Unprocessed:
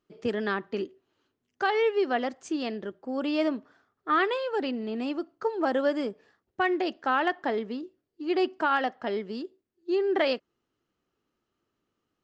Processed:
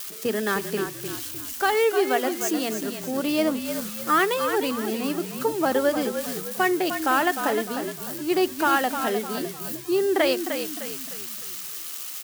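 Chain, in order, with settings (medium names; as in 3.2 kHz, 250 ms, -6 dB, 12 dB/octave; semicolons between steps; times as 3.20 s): zero-crossing glitches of -29.5 dBFS; high-pass 130 Hz; treble shelf 5.9 kHz +4.5 dB; hum notches 60/120/180/240 Hz; on a send: frequency-shifting echo 304 ms, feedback 42%, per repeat -42 Hz, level -8 dB; on the sum: trim +3.5 dB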